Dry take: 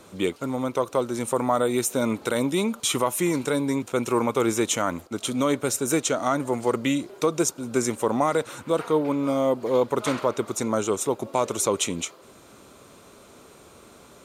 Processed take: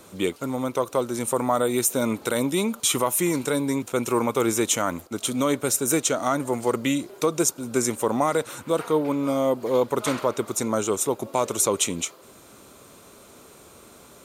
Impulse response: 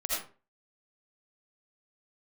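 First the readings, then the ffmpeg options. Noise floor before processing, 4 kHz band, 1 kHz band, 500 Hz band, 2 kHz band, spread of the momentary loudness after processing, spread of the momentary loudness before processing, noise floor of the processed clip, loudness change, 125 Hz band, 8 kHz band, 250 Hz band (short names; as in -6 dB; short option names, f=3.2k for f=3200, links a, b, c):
-50 dBFS, +1.0 dB, 0.0 dB, 0.0 dB, +0.5 dB, 5 LU, 4 LU, -50 dBFS, +1.0 dB, 0.0 dB, +3.5 dB, 0.0 dB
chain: -af "highshelf=f=9.9k:g=10.5"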